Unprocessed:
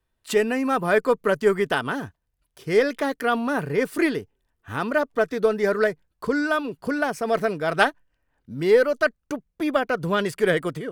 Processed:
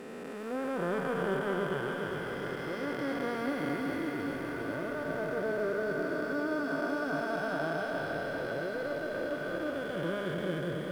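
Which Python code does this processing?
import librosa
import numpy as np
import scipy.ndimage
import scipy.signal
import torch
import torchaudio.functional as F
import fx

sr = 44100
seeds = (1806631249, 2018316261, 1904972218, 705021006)

y = fx.spec_blur(x, sr, span_ms=1270.0)
y = fx.noise_reduce_blind(y, sr, reduce_db=8)
y = fx.echo_crushed(y, sr, ms=404, feedback_pct=80, bits=10, wet_db=-8)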